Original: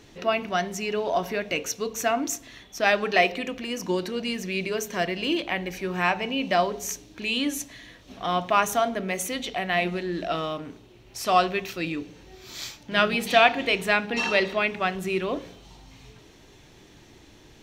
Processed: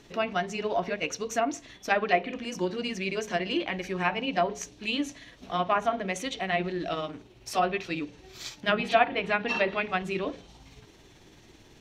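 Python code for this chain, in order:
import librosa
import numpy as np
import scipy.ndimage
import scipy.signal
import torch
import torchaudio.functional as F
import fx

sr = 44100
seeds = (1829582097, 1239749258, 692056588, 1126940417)

y = fx.stretch_grains(x, sr, factor=0.67, grain_ms=110.0)
y = fx.env_lowpass_down(y, sr, base_hz=1900.0, full_db=-18.5)
y = y * 10.0 ** (-1.5 / 20.0)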